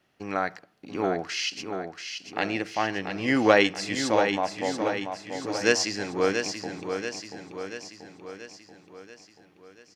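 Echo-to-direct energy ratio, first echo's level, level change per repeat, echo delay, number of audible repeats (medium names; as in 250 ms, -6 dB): -5.5 dB, -7.0 dB, -5.0 dB, 684 ms, 6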